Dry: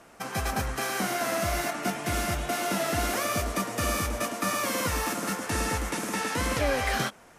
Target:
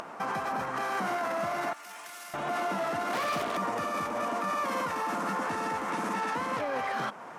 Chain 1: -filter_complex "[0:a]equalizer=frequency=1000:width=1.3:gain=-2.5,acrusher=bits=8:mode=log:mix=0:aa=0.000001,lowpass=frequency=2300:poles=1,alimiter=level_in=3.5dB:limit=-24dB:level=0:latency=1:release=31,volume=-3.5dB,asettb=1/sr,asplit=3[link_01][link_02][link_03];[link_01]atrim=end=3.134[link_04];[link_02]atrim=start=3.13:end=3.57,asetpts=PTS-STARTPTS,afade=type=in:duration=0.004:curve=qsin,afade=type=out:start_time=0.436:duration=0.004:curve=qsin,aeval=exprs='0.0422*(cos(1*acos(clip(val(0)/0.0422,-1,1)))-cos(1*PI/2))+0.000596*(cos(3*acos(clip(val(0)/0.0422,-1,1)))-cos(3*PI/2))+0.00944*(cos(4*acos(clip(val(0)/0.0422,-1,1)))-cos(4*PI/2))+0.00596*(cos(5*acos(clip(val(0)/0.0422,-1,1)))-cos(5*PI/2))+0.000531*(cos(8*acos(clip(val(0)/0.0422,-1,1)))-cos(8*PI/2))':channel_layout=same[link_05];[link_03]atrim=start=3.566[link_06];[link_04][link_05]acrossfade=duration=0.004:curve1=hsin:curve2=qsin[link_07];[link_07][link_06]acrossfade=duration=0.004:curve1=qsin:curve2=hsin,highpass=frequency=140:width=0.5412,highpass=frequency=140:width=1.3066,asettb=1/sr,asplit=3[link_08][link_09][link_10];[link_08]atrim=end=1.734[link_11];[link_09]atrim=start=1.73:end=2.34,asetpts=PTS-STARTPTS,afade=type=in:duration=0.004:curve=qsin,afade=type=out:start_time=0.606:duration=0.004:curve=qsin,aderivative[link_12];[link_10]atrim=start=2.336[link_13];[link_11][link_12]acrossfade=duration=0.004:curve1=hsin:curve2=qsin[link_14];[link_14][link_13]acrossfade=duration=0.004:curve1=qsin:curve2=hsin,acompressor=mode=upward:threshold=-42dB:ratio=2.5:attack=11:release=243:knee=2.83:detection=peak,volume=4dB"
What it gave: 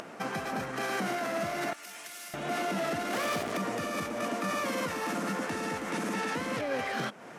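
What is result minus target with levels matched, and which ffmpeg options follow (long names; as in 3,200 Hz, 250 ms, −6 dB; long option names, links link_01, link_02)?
1,000 Hz band −3.5 dB
-filter_complex "[0:a]equalizer=frequency=1000:width=1.3:gain=9.5,acrusher=bits=8:mode=log:mix=0:aa=0.000001,lowpass=frequency=2300:poles=1,alimiter=level_in=3.5dB:limit=-24dB:level=0:latency=1:release=31,volume=-3.5dB,asettb=1/sr,asplit=3[link_01][link_02][link_03];[link_01]atrim=end=3.134[link_04];[link_02]atrim=start=3.13:end=3.57,asetpts=PTS-STARTPTS,afade=type=in:duration=0.004:curve=qsin,afade=type=out:start_time=0.436:duration=0.004:curve=qsin,aeval=exprs='0.0422*(cos(1*acos(clip(val(0)/0.0422,-1,1)))-cos(1*PI/2))+0.000596*(cos(3*acos(clip(val(0)/0.0422,-1,1)))-cos(3*PI/2))+0.00944*(cos(4*acos(clip(val(0)/0.0422,-1,1)))-cos(4*PI/2))+0.00596*(cos(5*acos(clip(val(0)/0.0422,-1,1)))-cos(5*PI/2))+0.000531*(cos(8*acos(clip(val(0)/0.0422,-1,1)))-cos(8*PI/2))':channel_layout=same[link_05];[link_03]atrim=start=3.566[link_06];[link_04][link_05]acrossfade=duration=0.004:curve1=hsin:curve2=qsin[link_07];[link_07][link_06]acrossfade=duration=0.004:curve1=qsin:curve2=hsin,highpass=frequency=140:width=0.5412,highpass=frequency=140:width=1.3066,asettb=1/sr,asplit=3[link_08][link_09][link_10];[link_08]atrim=end=1.734[link_11];[link_09]atrim=start=1.73:end=2.34,asetpts=PTS-STARTPTS,afade=type=in:duration=0.004:curve=qsin,afade=type=out:start_time=0.606:duration=0.004:curve=qsin,aderivative[link_12];[link_10]atrim=start=2.336[link_13];[link_11][link_12]acrossfade=duration=0.004:curve1=hsin:curve2=qsin[link_14];[link_14][link_13]acrossfade=duration=0.004:curve1=qsin:curve2=hsin,acompressor=mode=upward:threshold=-42dB:ratio=2.5:attack=11:release=243:knee=2.83:detection=peak,volume=4dB"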